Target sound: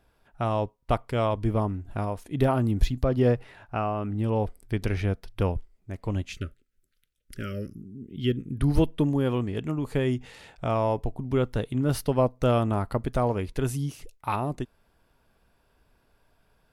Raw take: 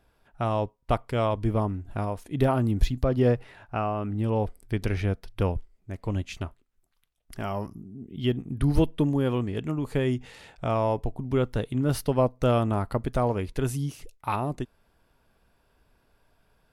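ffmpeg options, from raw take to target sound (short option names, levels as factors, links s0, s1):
-filter_complex "[0:a]asettb=1/sr,asplit=3[s0][s1][s2];[s0]atrim=end=6.324[s3];[s1]atrim=start=6.32:end=8.6,asetpts=PTS-STARTPTS,afade=t=in:d=0.004:c=qsin,afade=t=out:st=2.276:d=0.004:c=qsin,asuperstop=centerf=860:order=12:qfactor=1.2[s4];[s2]atrim=start=8.596[s5];[s3][s4]acrossfade=d=0.004:c1=hsin:c2=qsin[s6];[s6][s5]acrossfade=d=0.004:c1=qsin:c2=hsin"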